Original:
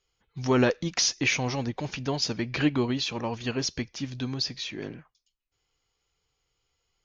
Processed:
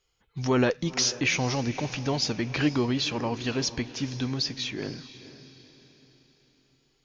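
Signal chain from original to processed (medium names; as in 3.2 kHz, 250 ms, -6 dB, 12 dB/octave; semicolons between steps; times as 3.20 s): in parallel at 0 dB: peak limiter -23 dBFS, peak gain reduction 11 dB; on the sum: echo that smears into a reverb 479 ms, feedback 44%, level -15 dB; trim -3.5 dB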